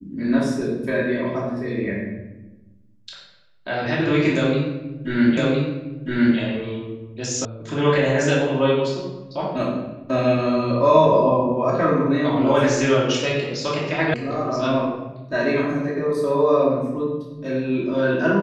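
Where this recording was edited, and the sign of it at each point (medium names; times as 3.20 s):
5.37 s: repeat of the last 1.01 s
7.45 s: sound stops dead
14.14 s: sound stops dead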